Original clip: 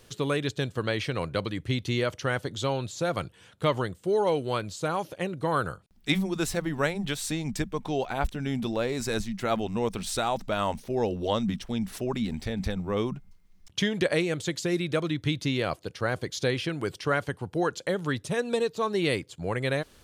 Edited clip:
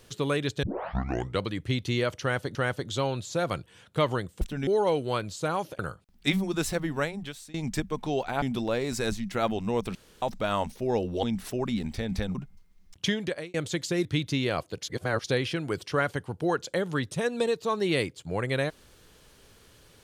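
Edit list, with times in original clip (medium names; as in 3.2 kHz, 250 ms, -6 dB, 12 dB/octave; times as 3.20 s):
0.63 s: tape start 0.78 s
2.21–2.55 s: loop, 2 plays
5.19–5.61 s: delete
6.66–7.36 s: fade out, to -24 dB
8.24–8.50 s: move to 4.07 s
10.03–10.30 s: room tone
11.31–11.71 s: delete
12.83–13.09 s: delete
13.80–14.28 s: fade out
14.79–15.18 s: delete
15.96–16.37 s: reverse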